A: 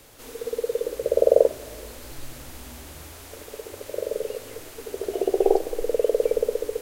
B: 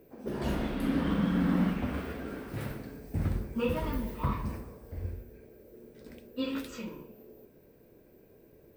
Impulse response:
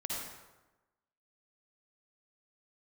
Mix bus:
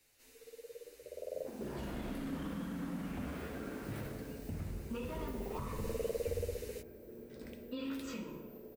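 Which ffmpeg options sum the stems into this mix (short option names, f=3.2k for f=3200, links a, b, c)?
-filter_complex "[0:a]highshelf=f=1.6k:t=q:w=1.5:g=7,bandreject=f=3.3k:w=8.9,asplit=2[a][b];[b]adelay=9.5,afreqshift=0.72[c];[a][c]amix=inputs=2:normalize=1,volume=-12.5dB,afade=t=in:st=5.54:d=0.34:silence=0.354813[d];[1:a]alimiter=level_in=3dB:limit=-24dB:level=0:latency=1:release=43,volume=-3dB,acompressor=threshold=-42dB:ratio=2.5,adelay=1350,volume=-1.5dB,asplit=2[e][f];[f]volume=-9dB[g];[2:a]atrim=start_sample=2205[h];[g][h]afir=irnorm=-1:irlink=0[i];[d][e][i]amix=inputs=3:normalize=0"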